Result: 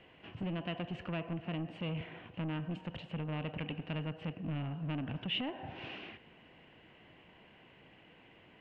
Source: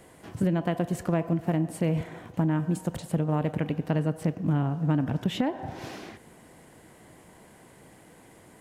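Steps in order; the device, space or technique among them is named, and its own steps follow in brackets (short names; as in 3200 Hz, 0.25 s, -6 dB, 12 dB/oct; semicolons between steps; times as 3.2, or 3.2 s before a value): overdriven synthesiser ladder filter (soft clip -24.5 dBFS, distortion -12 dB; ladder low-pass 3000 Hz, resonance 75%); gain +3.5 dB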